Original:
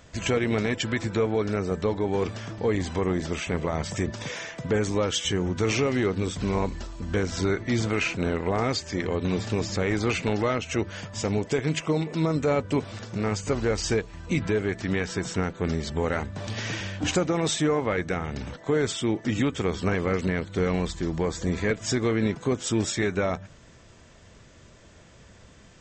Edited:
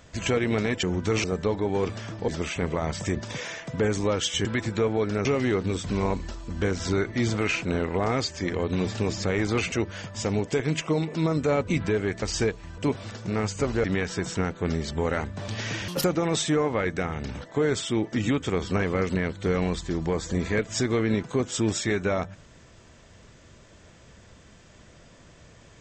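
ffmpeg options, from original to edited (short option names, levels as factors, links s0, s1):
-filter_complex "[0:a]asplit=13[s0][s1][s2][s3][s4][s5][s6][s7][s8][s9][s10][s11][s12];[s0]atrim=end=0.832[s13];[s1]atrim=start=5.358:end=5.772[s14];[s2]atrim=start=1.628:end=2.672[s15];[s3]atrim=start=3.188:end=5.362[s16];[s4]atrim=start=0.828:end=1.632[s17];[s5]atrim=start=5.768:end=10.242[s18];[s6]atrim=start=10.708:end=12.662[s19];[s7]atrim=start=14.278:end=14.832[s20];[s8]atrim=start=13.718:end=14.282[s21];[s9]atrim=start=12.658:end=13.722[s22];[s10]atrim=start=14.828:end=16.874[s23];[s11]atrim=start=16.87:end=17.16,asetpts=PTS-STARTPTS,asetrate=79821,aresample=44100[s24];[s12]atrim=start=17.156[s25];[s13][s14]acrossfade=d=0.004:c1=hsin:c2=hsin[s26];[s26][s15]acrossfade=d=0.004:c1=hsin:c2=hsin[s27];[s27][s16]acrossfade=d=0.004:c1=hsin:c2=hsin[s28];[s28][s17]acrossfade=d=0.004:c1=hsin:c2=hsin[s29];[s29][s18]acrossfade=d=0.004:c1=hsin:c2=hsin[s30];[s30][s19]acrossfade=d=0.004:c1=hsin:c2=hsin[s31];[s31][s20]acrossfade=d=0.004:c1=hsin:c2=hsin[s32];[s32][s21]acrossfade=d=0.004:c1=hsin:c2=hsin[s33];[s33][s22]acrossfade=d=0.004:c1=hsin:c2=hsin[s34];[s34][s23]acrossfade=d=0.004:c1=hsin:c2=hsin[s35];[s35][s24]acrossfade=d=0.004:c1=hsin:c2=hsin[s36];[s36][s25]acrossfade=d=0.004:c1=hsin:c2=hsin"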